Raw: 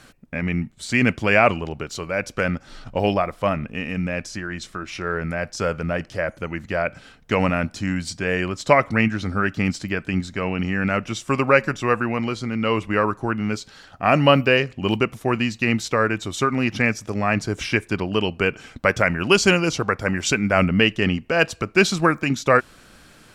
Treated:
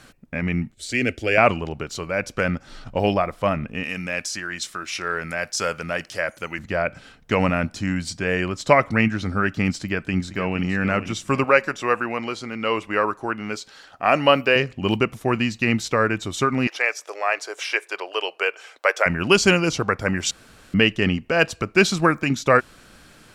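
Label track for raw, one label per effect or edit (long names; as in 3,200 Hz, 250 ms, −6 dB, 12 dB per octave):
0.740000	1.380000	phaser with its sweep stopped centre 420 Hz, stages 4
3.830000	6.590000	spectral tilt +3 dB per octave
9.750000	10.650000	delay throw 470 ms, feedback 45%, level −11 dB
11.440000	14.560000	bass and treble bass −12 dB, treble 0 dB
16.670000	19.060000	inverse Chebyshev high-pass filter stop band from 230 Hz
20.310000	20.740000	fill with room tone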